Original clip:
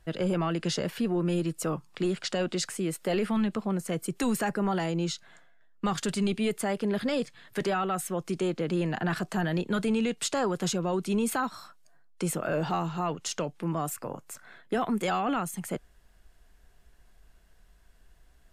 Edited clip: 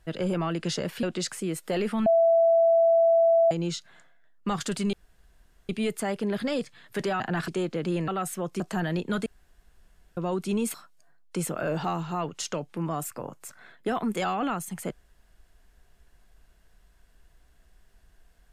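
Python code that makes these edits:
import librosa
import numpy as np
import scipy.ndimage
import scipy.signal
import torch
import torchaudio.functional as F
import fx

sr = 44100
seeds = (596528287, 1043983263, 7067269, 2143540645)

y = fx.edit(x, sr, fx.cut(start_s=1.03, length_s=1.37),
    fx.bleep(start_s=3.43, length_s=1.45, hz=665.0, db=-16.5),
    fx.insert_room_tone(at_s=6.3, length_s=0.76),
    fx.swap(start_s=7.81, length_s=0.52, other_s=8.93, other_length_s=0.28),
    fx.room_tone_fill(start_s=9.87, length_s=0.91),
    fx.cut(start_s=11.35, length_s=0.25), tone=tone)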